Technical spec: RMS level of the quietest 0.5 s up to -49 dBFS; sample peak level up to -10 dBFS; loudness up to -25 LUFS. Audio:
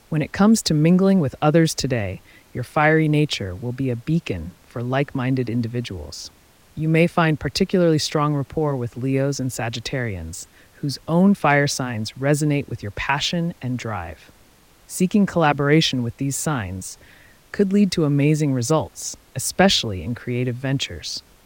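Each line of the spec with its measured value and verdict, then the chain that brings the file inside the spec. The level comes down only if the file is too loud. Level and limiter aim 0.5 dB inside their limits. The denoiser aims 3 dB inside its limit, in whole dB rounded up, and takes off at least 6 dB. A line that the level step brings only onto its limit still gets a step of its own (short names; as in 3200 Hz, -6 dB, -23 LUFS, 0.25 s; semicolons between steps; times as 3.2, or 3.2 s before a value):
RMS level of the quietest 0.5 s -52 dBFS: OK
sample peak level -4.5 dBFS: fail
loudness -21.0 LUFS: fail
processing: gain -4.5 dB; limiter -10.5 dBFS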